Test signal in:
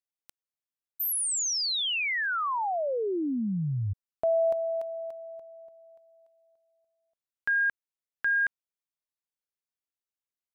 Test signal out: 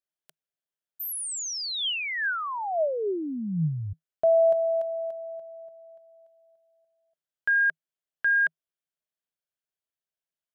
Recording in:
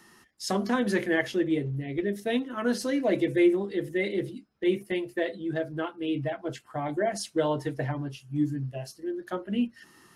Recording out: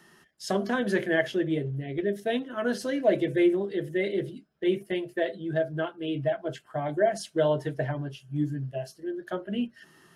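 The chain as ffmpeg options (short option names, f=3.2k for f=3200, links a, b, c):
-af "equalizer=f=160:t=o:w=0.33:g=10,equalizer=f=400:t=o:w=0.33:g=6,equalizer=f=630:t=o:w=0.33:g=10,equalizer=f=1.6k:t=o:w=0.33:g=7,equalizer=f=3.15k:t=o:w=0.33:g=6,volume=-4dB"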